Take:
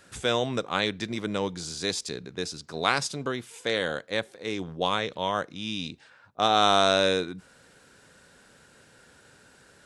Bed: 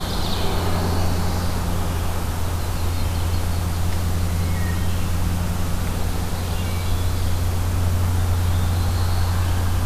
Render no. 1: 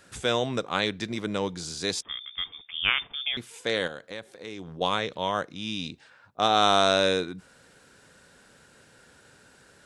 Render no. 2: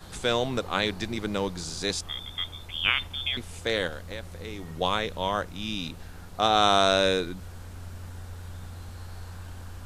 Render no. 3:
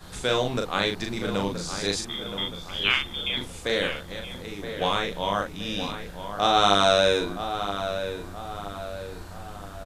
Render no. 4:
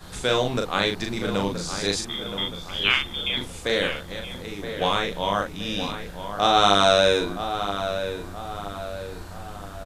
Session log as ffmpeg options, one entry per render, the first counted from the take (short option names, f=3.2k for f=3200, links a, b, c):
-filter_complex "[0:a]asettb=1/sr,asplit=3[a][b][c];[a]atrim=end=2.024[d];[b]atrim=start=2.02:end=3.37,asetpts=PTS-STARTPTS,afade=t=in:d=0.004:c=qsin,afade=t=out:st=1.346:d=0.004:c=qsin,lowpass=f=3.1k:t=q:w=0.5098,lowpass=f=3.1k:t=q:w=0.6013,lowpass=f=3.1k:t=q:w=0.9,lowpass=f=3.1k:t=q:w=2.563,afreqshift=-3700[e];[c]atrim=start=3.366[f];[d][e]acrossfade=d=0.004:c1=hsin:c2=qsin[g];[g][f]acrossfade=d=0.004:c1=qsin:c2=hsin,asettb=1/sr,asplit=3[h][i][j];[h]atrim=end=3.874[k];[i]atrim=start=3.87:end=4.81,asetpts=PTS-STARTPTS,afade=t=in:d=0.004:c=qsin,afade=t=out:st=0.936:d=0.004:c=qsin,acompressor=threshold=-37dB:ratio=2.5:attack=3.2:release=140:knee=1:detection=peak[l];[j]atrim=start=4.806[m];[k][l]acrossfade=d=0.004:c1=hsin:c2=qsin[n];[n][m]acrossfade=d=0.004:c1=qsin:c2=hsin"
-filter_complex "[1:a]volume=-20.5dB[a];[0:a][a]amix=inputs=2:normalize=0"
-filter_complex "[0:a]asplit=2[a][b];[b]adelay=40,volume=-3.5dB[c];[a][c]amix=inputs=2:normalize=0,asplit=2[d][e];[e]adelay=972,lowpass=f=2.7k:p=1,volume=-9dB,asplit=2[f][g];[g]adelay=972,lowpass=f=2.7k:p=1,volume=0.49,asplit=2[h][i];[i]adelay=972,lowpass=f=2.7k:p=1,volume=0.49,asplit=2[j][k];[k]adelay=972,lowpass=f=2.7k:p=1,volume=0.49,asplit=2[l][m];[m]adelay=972,lowpass=f=2.7k:p=1,volume=0.49,asplit=2[n][o];[o]adelay=972,lowpass=f=2.7k:p=1,volume=0.49[p];[f][h][j][l][n][p]amix=inputs=6:normalize=0[q];[d][q]amix=inputs=2:normalize=0"
-af "volume=2dB,alimiter=limit=-2dB:level=0:latency=1"